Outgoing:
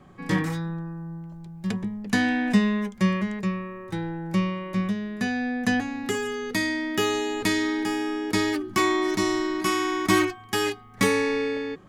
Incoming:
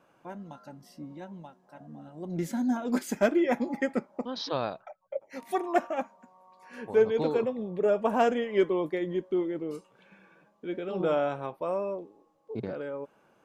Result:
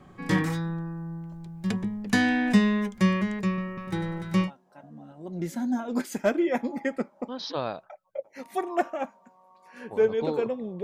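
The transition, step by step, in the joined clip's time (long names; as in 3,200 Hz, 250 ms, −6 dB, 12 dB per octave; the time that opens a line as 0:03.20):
outgoing
0:03.48–0:04.51: echo machine with several playback heads 98 ms, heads first and third, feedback 49%, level −9 dB
0:04.46: continue with incoming from 0:01.43, crossfade 0.10 s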